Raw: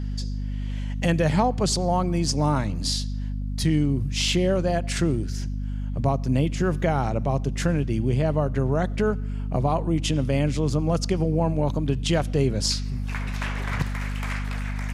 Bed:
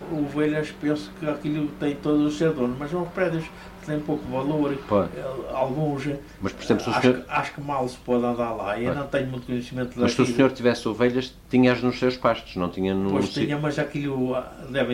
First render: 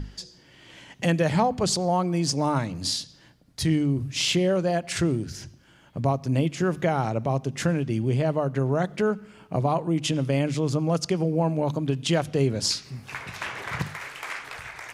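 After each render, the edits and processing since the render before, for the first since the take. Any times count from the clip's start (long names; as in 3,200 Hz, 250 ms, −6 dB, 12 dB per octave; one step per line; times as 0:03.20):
mains-hum notches 50/100/150/200/250 Hz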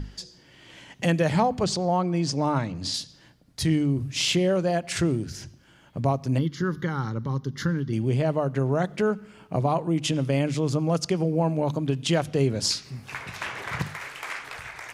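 0:01.64–0:02.94: high-frequency loss of the air 69 metres
0:06.38–0:07.93: phaser with its sweep stopped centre 2,500 Hz, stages 6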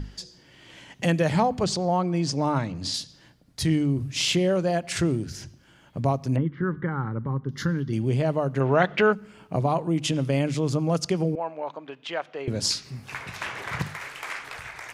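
0:06.36–0:07.49: low-pass filter 2,100 Hz 24 dB per octave
0:08.60–0:09.13: drawn EQ curve 210 Hz 0 dB, 2,800 Hz +13 dB, 11,000 Hz −16 dB
0:11.35–0:12.48: band-pass filter 710–2,300 Hz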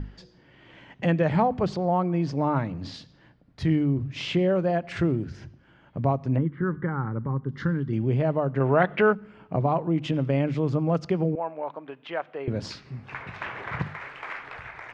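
low-pass filter 2,200 Hz 12 dB per octave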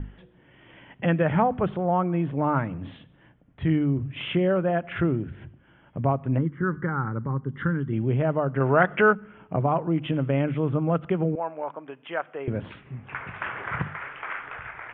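dynamic equaliser 1,400 Hz, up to +6 dB, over −48 dBFS, Q 2.8
Butterworth low-pass 3,400 Hz 96 dB per octave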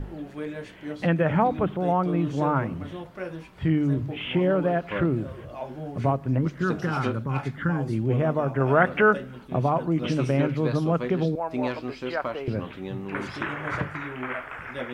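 mix in bed −11 dB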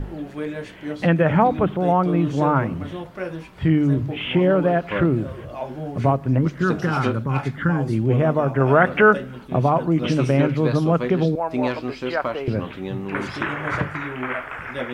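level +5 dB
brickwall limiter −3 dBFS, peak gain reduction 2 dB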